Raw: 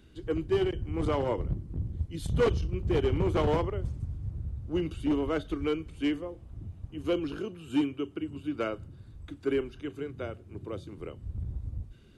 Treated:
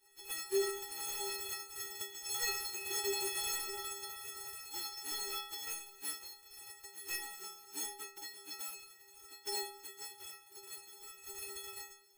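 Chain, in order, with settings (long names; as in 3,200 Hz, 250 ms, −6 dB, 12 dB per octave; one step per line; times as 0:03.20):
spectral envelope flattened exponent 0.1
stiff-string resonator 390 Hz, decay 0.79 s, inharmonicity 0.03
level +8.5 dB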